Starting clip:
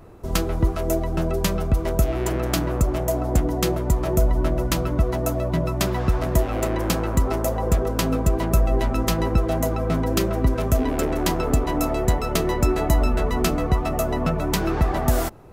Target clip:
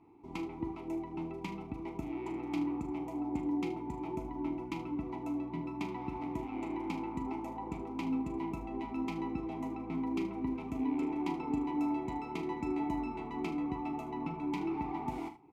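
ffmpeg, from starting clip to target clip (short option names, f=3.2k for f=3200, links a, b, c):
-filter_complex "[0:a]asplit=3[a][b][c];[a]bandpass=f=300:t=q:w=8,volume=0dB[d];[b]bandpass=f=870:t=q:w=8,volume=-6dB[e];[c]bandpass=f=2.24k:t=q:w=8,volume=-9dB[f];[d][e][f]amix=inputs=3:normalize=0,equalizer=f=290:t=o:w=0.73:g=-4,asplit=2[g][h];[h]adelay=35,volume=-13dB[i];[g][i]amix=inputs=2:normalize=0,asplit=2[j][k];[k]aecho=0:1:42|76:0.282|0.211[l];[j][l]amix=inputs=2:normalize=0"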